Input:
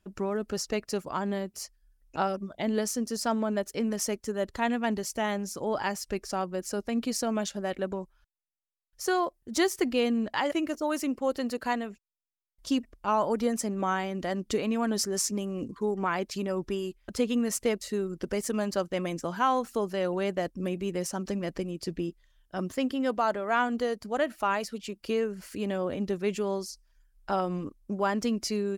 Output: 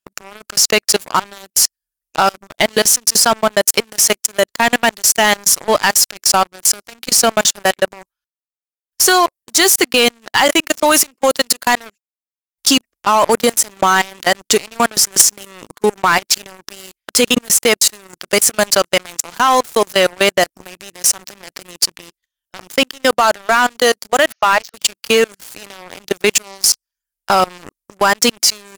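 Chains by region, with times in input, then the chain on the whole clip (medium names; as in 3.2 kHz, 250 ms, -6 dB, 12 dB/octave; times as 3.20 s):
24.32–24.74 s: brick-wall FIR band-pass 420–6700 Hz + treble shelf 2.1 kHz -4 dB
whole clip: tilt EQ +4 dB/octave; level held to a coarse grid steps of 16 dB; waveshaping leveller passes 5; trim +4 dB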